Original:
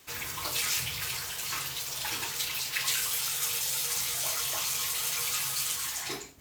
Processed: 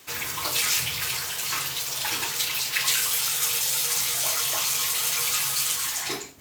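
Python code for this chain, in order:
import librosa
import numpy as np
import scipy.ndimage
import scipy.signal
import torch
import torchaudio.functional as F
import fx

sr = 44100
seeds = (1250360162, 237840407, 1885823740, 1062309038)

y = fx.highpass(x, sr, hz=110.0, slope=6)
y = F.gain(torch.from_numpy(y), 6.0).numpy()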